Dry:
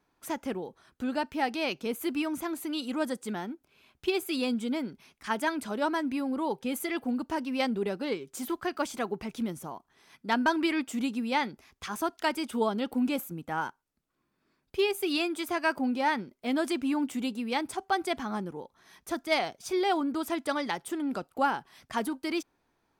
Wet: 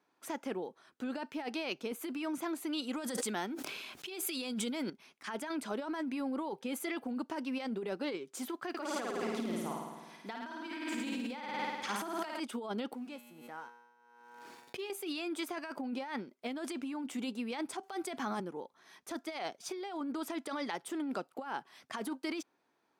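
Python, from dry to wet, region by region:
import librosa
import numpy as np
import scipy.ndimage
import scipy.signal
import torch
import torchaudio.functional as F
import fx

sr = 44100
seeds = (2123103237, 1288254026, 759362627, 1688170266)

y = fx.chain(x, sr, fx.high_shelf(hz=2400.0, db=8.0),
    fx.sustainer(db_per_s=28.0), at=(2.93, 4.9))
y = fx.chain(y, sr, fx.block_float(bits=7),
    fx.room_flutter(wall_m=9.2, rt60_s=1.3), at=(8.69, 12.4))
y = fx.chain(y, sr, fx.law_mismatch(coded='A'),
    fx.comb_fb(f0_hz=120.0, decay_s=1.2, harmonics='all', damping=0.0, mix_pct=80),
    fx.pre_swell(db_per_s=36.0), at=(12.95, 14.9))
y = fx.chain(y, sr, fx.high_shelf(hz=8100.0, db=6.0),
    fx.band_squash(depth_pct=70), at=(17.83, 18.4))
y = scipy.signal.sosfilt(scipy.signal.butter(2, 240.0, 'highpass', fs=sr, output='sos'), y)
y = fx.high_shelf(y, sr, hz=12000.0, db=-10.5)
y = fx.over_compress(y, sr, threshold_db=-33.0, ratio=-1.0)
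y = F.gain(torch.from_numpy(y), -4.5).numpy()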